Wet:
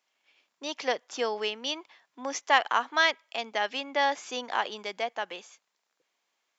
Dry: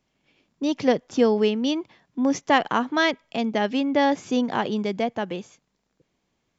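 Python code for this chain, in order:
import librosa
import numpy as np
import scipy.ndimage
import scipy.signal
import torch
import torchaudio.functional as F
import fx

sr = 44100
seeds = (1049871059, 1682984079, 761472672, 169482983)

y = scipy.signal.sosfilt(scipy.signal.butter(2, 840.0, 'highpass', fs=sr, output='sos'), x)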